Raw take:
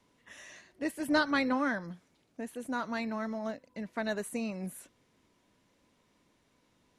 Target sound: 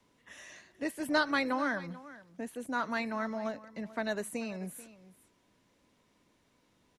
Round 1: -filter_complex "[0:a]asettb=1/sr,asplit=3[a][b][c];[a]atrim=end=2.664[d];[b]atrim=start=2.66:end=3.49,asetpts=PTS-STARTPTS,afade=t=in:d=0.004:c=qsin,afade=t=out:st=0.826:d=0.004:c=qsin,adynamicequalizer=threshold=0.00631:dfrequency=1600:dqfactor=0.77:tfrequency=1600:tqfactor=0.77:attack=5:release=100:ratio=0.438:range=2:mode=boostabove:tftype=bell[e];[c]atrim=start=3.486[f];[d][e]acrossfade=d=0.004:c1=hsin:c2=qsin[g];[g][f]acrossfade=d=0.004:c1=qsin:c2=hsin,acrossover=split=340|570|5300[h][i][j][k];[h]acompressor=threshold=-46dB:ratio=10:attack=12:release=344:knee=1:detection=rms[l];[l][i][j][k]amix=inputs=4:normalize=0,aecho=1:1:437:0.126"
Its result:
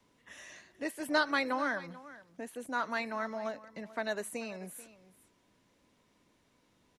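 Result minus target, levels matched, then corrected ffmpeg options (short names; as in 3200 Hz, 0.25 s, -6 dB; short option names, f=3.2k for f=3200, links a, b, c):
compressor: peak gain reduction +7.5 dB
-filter_complex "[0:a]asettb=1/sr,asplit=3[a][b][c];[a]atrim=end=2.664[d];[b]atrim=start=2.66:end=3.49,asetpts=PTS-STARTPTS,afade=t=in:d=0.004:c=qsin,afade=t=out:st=0.826:d=0.004:c=qsin,adynamicequalizer=threshold=0.00631:dfrequency=1600:dqfactor=0.77:tfrequency=1600:tqfactor=0.77:attack=5:release=100:ratio=0.438:range=2:mode=boostabove:tftype=bell[e];[c]atrim=start=3.486[f];[d][e]acrossfade=d=0.004:c1=hsin:c2=qsin[g];[g][f]acrossfade=d=0.004:c1=qsin:c2=hsin,acrossover=split=340|570|5300[h][i][j][k];[h]acompressor=threshold=-37.5dB:ratio=10:attack=12:release=344:knee=1:detection=rms[l];[l][i][j][k]amix=inputs=4:normalize=0,aecho=1:1:437:0.126"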